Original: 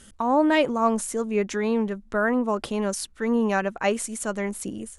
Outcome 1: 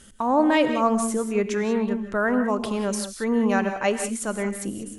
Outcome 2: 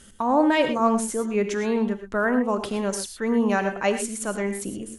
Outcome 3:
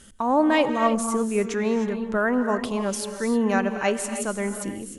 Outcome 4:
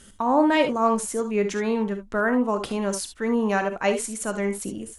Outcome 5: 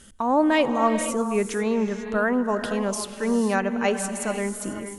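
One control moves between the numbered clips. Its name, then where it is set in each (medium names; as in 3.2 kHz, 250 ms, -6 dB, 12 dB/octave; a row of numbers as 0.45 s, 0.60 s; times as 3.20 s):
gated-style reverb, gate: 210 ms, 140 ms, 340 ms, 90 ms, 520 ms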